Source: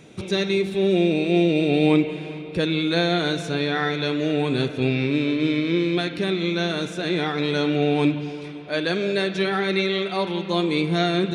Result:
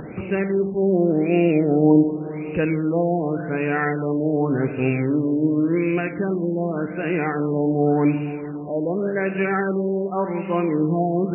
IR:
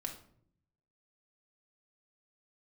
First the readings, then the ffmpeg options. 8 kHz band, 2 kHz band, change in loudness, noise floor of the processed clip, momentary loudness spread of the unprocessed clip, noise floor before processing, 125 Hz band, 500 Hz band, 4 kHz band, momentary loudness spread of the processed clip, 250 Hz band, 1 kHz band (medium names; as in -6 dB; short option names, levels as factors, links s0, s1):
under -35 dB, -2.5 dB, +1.0 dB, -31 dBFS, 6 LU, -35 dBFS, +1.5 dB, +1.5 dB, under -20 dB, 7 LU, +2.0 dB, +1.5 dB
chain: -filter_complex "[0:a]acompressor=mode=upward:threshold=0.0501:ratio=2.5,asplit=2[s0][s1];[1:a]atrim=start_sample=2205[s2];[s1][s2]afir=irnorm=-1:irlink=0,volume=0.562[s3];[s0][s3]amix=inputs=2:normalize=0,afftfilt=real='re*lt(b*sr/1024,970*pow(3000/970,0.5+0.5*sin(2*PI*0.88*pts/sr)))':imag='im*lt(b*sr/1024,970*pow(3000/970,0.5+0.5*sin(2*PI*0.88*pts/sr)))':win_size=1024:overlap=0.75,volume=0.841"